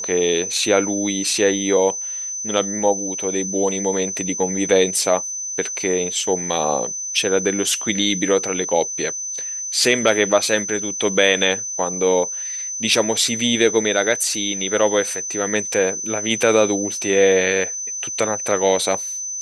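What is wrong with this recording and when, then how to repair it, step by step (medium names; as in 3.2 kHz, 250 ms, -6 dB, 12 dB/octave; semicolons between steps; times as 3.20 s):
whine 6.1 kHz -25 dBFS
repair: band-stop 6.1 kHz, Q 30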